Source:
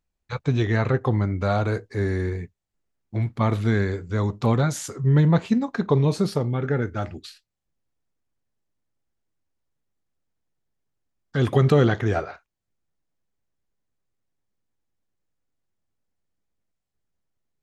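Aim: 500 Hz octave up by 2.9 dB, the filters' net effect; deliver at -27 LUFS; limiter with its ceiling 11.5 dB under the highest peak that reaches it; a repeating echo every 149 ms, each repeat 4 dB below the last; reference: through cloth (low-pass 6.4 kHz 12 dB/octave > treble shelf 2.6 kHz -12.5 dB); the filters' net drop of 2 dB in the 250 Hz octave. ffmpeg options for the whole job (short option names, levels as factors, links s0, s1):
-af "equalizer=f=250:t=o:g=-4.5,equalizer=f=500:t=o:g=5.5,alimiter=limit=0.168:level=0:latency=1,lowpass=6400,highshelf=f=2600:g=-12.5,aecho=1:1:149|298|447|596|745|894|1043|1192|1341:0.631|0.398|0.25|0.158|0.0994|0.0626|0.0394|0.0249|0.0157,volume=0.794"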